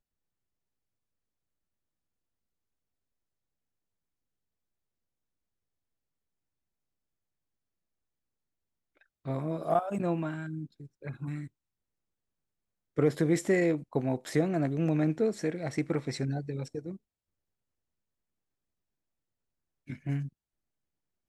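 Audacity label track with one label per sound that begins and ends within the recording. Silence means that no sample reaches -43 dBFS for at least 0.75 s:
9.260000	11.470000	sound
12.980000	16.960000	sound
19.890000	20.280000	sound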